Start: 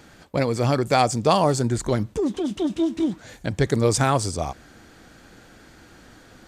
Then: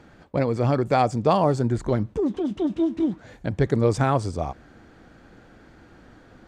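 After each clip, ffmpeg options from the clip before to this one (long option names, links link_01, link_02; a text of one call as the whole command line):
ffmpeg -i in.wav -af "lowpass=frequency=1400:poles=1" out.wav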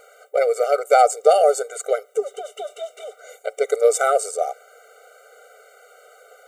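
ffmpeg -i in.wav -af "aexciter=amount=6.7:drive=4.8:freq=7000,afftfilt=real='re*eq(mod(floor(b*sr/1024/390),2),1)':imag='im*eq(mod(floor(b*sr/1024/390),2),1)':win_size=1024:overlap=0.75,volume=7.5dB" out.wav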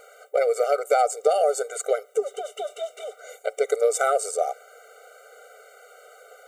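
ffmpeg -i in.wav -af "acompressor=threshold=-18dB:ratio=3" out.wav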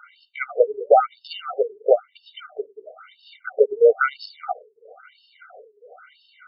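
ffmpeg -i in.wav -af "afftfilt=real='re*between(b*sr/1024,300*pow(3800/300,0.5+0.5*sin(2*PI*1*pts/sr))/1.41,300*pow(3800/300,0.5+0.5*sin(2*PI*1*pts/sr))*1.41)':imag='im*between(b*sr/1024,300*pow(3800/300,0.5+0.5*sin(2*PI*1*pts/sr))/1.41,300*pow(3800/300,0.5+0.5*sin(2*PI*1*pts/sr))*1.41)':win_size=1024:overlap=0.75,volume=8dB" out.wav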